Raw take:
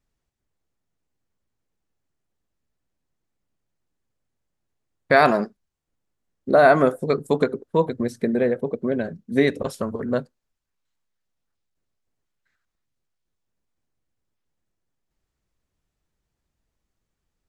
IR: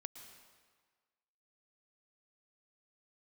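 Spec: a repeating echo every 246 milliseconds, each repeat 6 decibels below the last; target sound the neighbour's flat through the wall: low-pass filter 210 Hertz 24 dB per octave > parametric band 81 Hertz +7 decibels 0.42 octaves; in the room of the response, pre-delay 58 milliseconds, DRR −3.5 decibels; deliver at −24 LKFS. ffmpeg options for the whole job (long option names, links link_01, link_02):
-filter_complex "[0:a]aecho=1:1:246|492|738|984|1230|1476:0.501|0.251|0.125|0.0626|0.0313|0.0157,asplit=2[link_01][link_02];[1:a]atrim=start_sample=2205,adelay=58[link_03];[link_02][link_03]afir=irnorm=-1:irlink=0,volume=8dB[link_04];[link_01][link_04]amix=inputs=2:normalize=0,lowpass=frequency=210:width=0.5412,lowpass=frequency=210:width=1.3066,equalizer=frequency=81:width_type=o:width=0.42:gain=7,volume=4dB"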